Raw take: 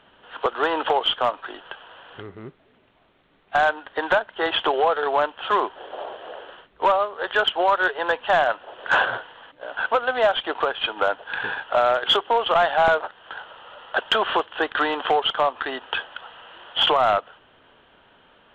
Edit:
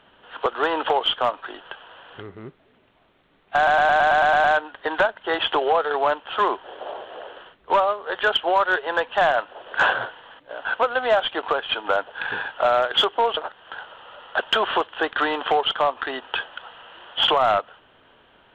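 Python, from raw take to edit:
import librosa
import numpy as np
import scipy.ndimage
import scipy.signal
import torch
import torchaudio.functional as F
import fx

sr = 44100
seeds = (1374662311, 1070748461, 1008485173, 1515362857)

y = fx.edit(x, sr, fx.stutter(start_s=3.56, slice_s=0.11, count=9),
    fx.cut(start_s=12.49, length_s=0.47), tone=tone)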